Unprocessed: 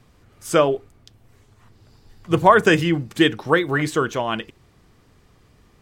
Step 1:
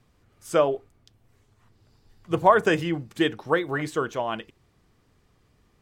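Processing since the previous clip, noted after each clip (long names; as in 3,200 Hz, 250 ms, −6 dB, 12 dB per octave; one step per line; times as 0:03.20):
dynamic equaliser 680 Hz, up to +6 dB, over −29 dBFS, Q 0.89
level −8.5 dB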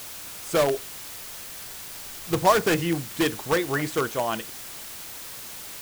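in parallel at −5.5 dB: wrap-around overflow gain 16.5 dB
on the sum: background noise white −37 dBFS
level −2 dB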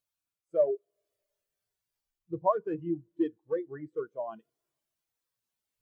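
four-comb reverb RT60 3.3 s, combs from 26 ms, DRR 18.5 dB
speech leveller within 3 dB 0.5 s
every bin expanded away from the loudest bin 2.5 to 1
level −4 dB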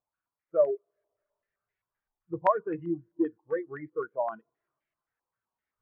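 low-pass on a step sequencer 7.7 Hz 880–2,100 Hz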